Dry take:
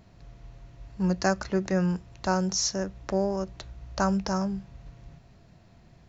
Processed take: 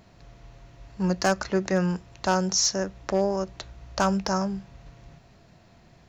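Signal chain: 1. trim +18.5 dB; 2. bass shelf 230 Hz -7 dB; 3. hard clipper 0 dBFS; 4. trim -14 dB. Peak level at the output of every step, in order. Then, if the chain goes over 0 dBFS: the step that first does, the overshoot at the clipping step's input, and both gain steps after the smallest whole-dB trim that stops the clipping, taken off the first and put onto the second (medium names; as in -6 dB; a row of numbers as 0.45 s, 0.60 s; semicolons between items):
+8.5 dBFS, +7.0 dBFS, 0.0 dBFS, -14.0 dBFS; step 1, 7.0 dB; step 1 +11.5 dB, step 4 -7 dB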